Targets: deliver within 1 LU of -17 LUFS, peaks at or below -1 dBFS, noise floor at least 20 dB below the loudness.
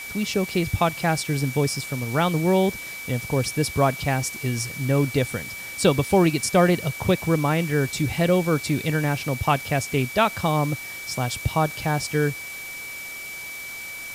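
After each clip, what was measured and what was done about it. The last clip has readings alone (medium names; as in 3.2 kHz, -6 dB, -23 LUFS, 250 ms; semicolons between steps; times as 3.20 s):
steady tone 2.3 kHz; tone level -34 dBFS; noise floor -36 dBFS; noise floor target -44 dBFS; loudness -23.5 LUFS; peak level -6.0 dBFS; loudness target -17.0 LUFS
-> band-stop 2.3 kHz, Q 30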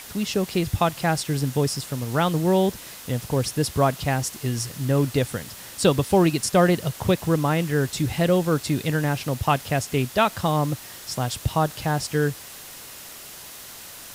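steady tone not found; noise floor -41 dBFS; noise floor target -44 dBFS
-> noise print and reduce 6 dB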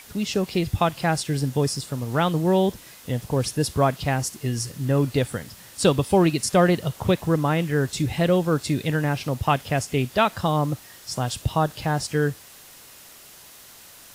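noise floor -47 dBFS; loudness -23.5 LUFS; peak level -6.5 dBFS; loudness target -17.0 LUFS
-> trim +6.5 dB; peak limiter -1 dBFS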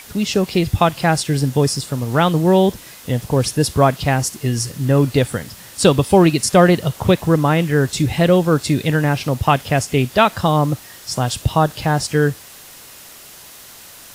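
loudness -17.0 LUFS; peak level -1.0 dBFS; noise floor -40 dBFS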